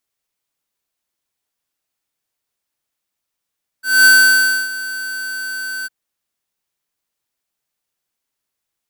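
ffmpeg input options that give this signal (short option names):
-f lavfi -i "aevalsrc='0.422*(2*lt(mod(1530*t,1),0.5)-1)':d=2.055:s=44100,afade=t=in:d=0.222,afade=t=out:st=0.222:d=0.63:silence=0.133,afade=t=out:st=2.03:d=0.025"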